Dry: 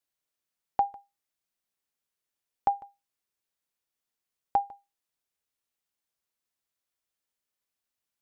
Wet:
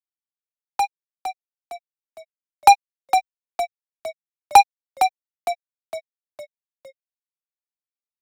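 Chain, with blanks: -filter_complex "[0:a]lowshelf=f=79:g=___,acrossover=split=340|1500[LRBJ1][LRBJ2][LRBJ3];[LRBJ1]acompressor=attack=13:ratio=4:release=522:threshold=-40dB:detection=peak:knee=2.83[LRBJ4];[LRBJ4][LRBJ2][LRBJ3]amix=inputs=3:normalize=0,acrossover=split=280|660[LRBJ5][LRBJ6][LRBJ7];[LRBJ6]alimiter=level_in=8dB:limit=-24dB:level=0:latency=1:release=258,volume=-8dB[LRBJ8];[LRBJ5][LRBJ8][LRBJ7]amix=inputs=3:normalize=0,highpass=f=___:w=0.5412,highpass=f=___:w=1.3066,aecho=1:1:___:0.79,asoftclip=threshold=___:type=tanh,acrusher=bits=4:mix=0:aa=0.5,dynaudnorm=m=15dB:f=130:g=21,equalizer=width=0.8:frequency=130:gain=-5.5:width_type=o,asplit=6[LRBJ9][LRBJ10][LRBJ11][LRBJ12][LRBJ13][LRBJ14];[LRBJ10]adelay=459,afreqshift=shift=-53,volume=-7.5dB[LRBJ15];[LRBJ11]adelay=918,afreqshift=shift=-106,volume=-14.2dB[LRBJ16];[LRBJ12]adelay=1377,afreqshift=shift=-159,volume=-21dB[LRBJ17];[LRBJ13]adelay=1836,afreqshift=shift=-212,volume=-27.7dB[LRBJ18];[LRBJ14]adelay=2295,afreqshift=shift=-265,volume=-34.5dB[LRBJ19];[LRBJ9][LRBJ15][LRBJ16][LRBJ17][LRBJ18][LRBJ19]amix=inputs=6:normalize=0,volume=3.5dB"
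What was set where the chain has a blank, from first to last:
-5, 46, 46, 2.2, -19.5dB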